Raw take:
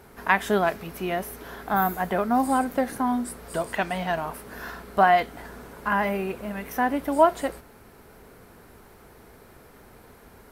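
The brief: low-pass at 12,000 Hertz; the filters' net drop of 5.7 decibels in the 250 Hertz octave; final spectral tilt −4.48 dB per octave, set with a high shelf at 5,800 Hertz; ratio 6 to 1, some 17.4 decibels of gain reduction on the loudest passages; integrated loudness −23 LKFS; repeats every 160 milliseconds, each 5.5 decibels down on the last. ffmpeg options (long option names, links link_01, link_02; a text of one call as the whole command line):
ffmpeg -i in.wav -af "lowpass=12000,equalizer=frequency=250:width_type=o:gain=-7,highshelf=frequency=5800:gain=-4.5,acompressor=threshold=-33dB:ratio=6,aecho=1:1:160|320|480|640|800|960|1120:0.531|0.281|0.149|0.079|0.0419|0.0222|0.0118,volume=13.5dB" out.wav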